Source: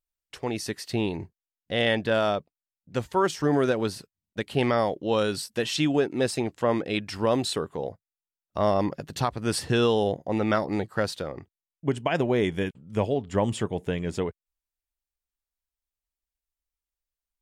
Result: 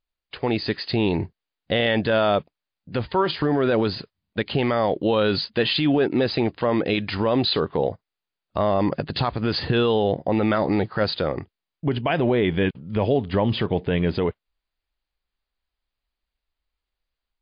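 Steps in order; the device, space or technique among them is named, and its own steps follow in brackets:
low-bitrate web radio (automatic gain control gain up to 4 dB; brickwall limiter −17.5 dBFS, peak gain reduction 10 dB; level +6.5 dB; MP3 40 kbit/s 11,025 Hz)

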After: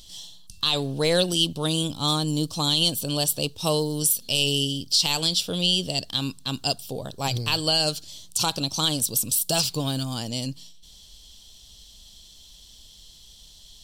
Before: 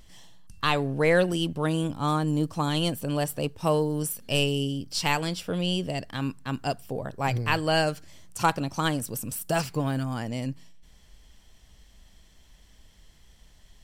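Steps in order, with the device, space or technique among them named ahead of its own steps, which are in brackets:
over-bright horn tweeter (high shelf with overshoot 2,700 Hz +11 dB, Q 3; brickwall limiter −10 dBFS, peak gain reduction 8 dB)

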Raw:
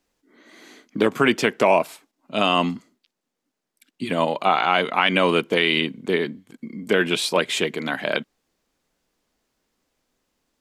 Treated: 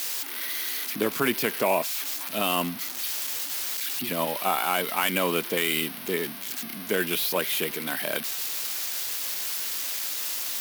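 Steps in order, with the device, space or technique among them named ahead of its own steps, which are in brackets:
budget class-D amplifier (gap after every zero crossing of 0.061 ms; spike at every zero crossing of −10 dBFS)
level −7 dB

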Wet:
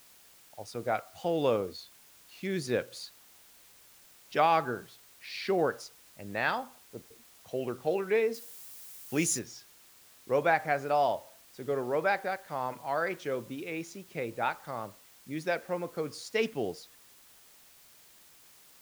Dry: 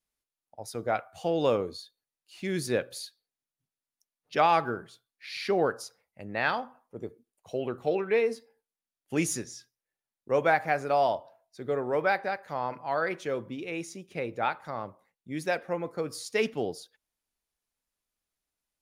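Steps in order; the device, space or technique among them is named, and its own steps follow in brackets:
worn cassette (low-pass filter 7,500 Hz; tape wow and flutter; tape dropouts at 0:07.02, 80 ms −30 dB; white noise bed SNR 24 dB)
0:08.34–0:09.39: high-shelf EQ 5,500 Hz +12 dB
level −2 dB

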